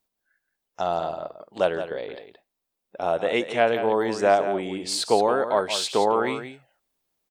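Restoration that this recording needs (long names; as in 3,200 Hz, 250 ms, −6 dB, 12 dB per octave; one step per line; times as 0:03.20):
echo removal 172 ms −10 dB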